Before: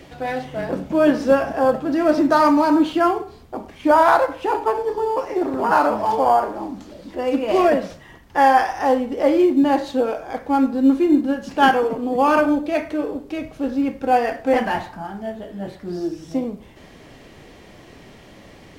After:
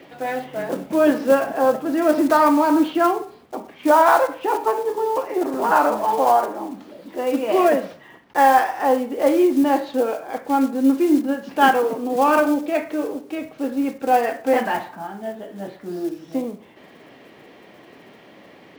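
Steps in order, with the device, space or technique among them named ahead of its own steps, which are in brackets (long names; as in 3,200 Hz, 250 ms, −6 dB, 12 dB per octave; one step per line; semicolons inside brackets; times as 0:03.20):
early digital voice recorder (band-pass filter 220–3,500 Hz; one scale factor per block 5 bits)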